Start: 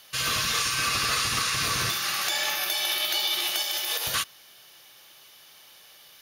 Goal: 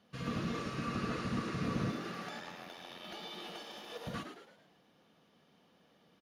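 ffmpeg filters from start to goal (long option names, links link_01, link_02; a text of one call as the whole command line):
ffmpeg -i in.wav -filter_complex "[0:a]aecho=1:1:4.2:0.48,asettb=1/sr,asplit=3[link_01][link_02][link_03];[link_01]atrim=end=2.394[link_04];[link_02]atrim=start=2.39:end=3.05,asetpts=PTS-STARTPTS,afade=type=in:duration=0.004:curve=qsin,afade=type=out:start_time=0.656:duration=0.004:curve=qsin,tremolo=f=87:d=0.919[link_05];[link_03]atrim=start=3.046[link_06];[link_04][link_05]acrossfade=duration=0.004:curve1=hsin:curve2=qsin[link_07];[link_07][link_06]acrossfade=duration=0.004:curve1=qsin:curve2=hsin,bandpass=frequency=180:width_type=q:width=1.5:csg=0,asplit=2[link_08][link_09];[link_09]asplit=5[link_10][link_11][link_12][link_13][link_14];[link_10]adelay=110,afreqshift=110,volume=-8dB[link_15];[link_11]adelay=220,afreqshift=220,volume=-14.9dB[link_16];[link_12]adelay=330,afreqshift=330,volume=-21.9dB[link_17];[link_13]adelay=440,afreqshift=440,volume=-28.8dB[link_18];[link_14]adelay=550,afreqshift=550,volume=-35.7dB[link_19];[link_15][link_16][link_17][link_18][link_19]amix=inputs=5:normalize=0[link_20];[link_08][link_20]amix=inputs=2:normalize=0,volume=6dB" out.wav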